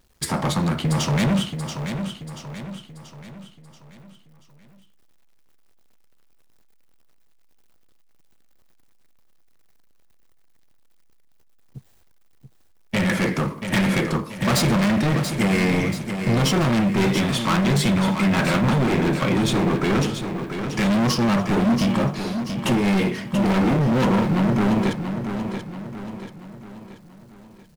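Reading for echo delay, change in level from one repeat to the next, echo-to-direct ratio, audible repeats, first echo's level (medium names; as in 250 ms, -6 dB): 683 ms, -6.5 dB, -7.0 dB, 5, -8.0 dB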